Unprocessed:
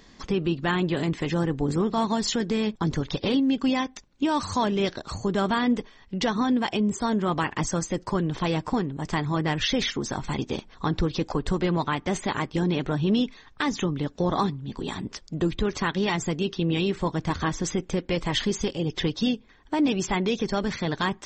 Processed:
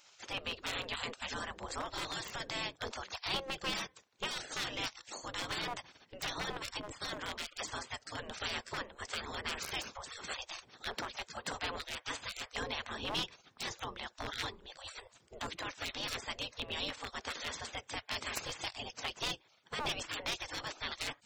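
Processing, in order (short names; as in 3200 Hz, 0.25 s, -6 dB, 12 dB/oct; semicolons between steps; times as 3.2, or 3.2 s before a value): one-sided fold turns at -18.5 dBFS; spectral gate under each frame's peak -20 dB weak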